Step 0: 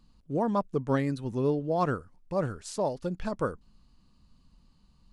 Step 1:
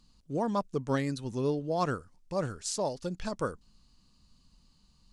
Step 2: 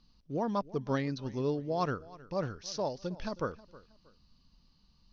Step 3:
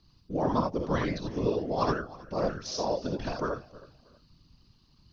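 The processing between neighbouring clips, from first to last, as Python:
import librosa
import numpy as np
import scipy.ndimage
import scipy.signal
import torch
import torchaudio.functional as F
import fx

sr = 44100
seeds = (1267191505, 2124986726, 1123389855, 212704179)

y1 = fx.peak_eq(x, sr, hz=6300.0, db=11.0, octaves=1.9)
y1 = F.gain(torch.from_numpy(y1), -3.0).numpy()
y2 = scipy.signal.sosfilt(scipy.signal.butter(16, 6100.0, 'lowpass', fs=sr, output='sos'), y1)
y2 = fx.echo_feedback(y2, sr, ms=317, feedback_pct=31, wet_db=-20)
y2 = F.gain(torch.from_numpy(y2), -2.0).numpy()
y3 = fx.rev_gated(y2, sr, seeds[0], gate_ms=100, shape='rising', drr_db=1.0)
y3 = fx.whisperise(y3, sr, seeds[1])
y3 = F.gain(torch.from_numpy(y3), 2.0).numpy()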